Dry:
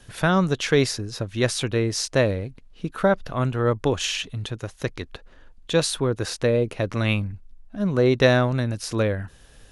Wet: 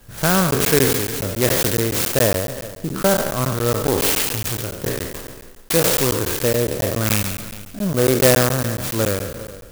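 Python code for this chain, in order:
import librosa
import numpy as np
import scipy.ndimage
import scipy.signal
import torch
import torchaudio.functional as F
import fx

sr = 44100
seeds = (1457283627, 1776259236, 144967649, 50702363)

p1 = fx.spec_trails(x, sr, decay_s=1.21)
p2 = fx.dynamic_eq(p1, sr, hz=3400.0, q=1.3, threshold_db=-39.0, ratio=4.0, max_db=6)
p3 = p2 + fx.echo_single(p2, sr, ms=400, db=-17.0, dry=0)
p4 = fx.buffer_crackle(p3, sr, first_s=0.51, period_s=0.14, block=512, kind='zero')
p5 = fx.clock_jitter(p4, sr, seeds[0], jitter_ms=0.098)
y = p5 * 10.0 ** (1.0 / 20.0)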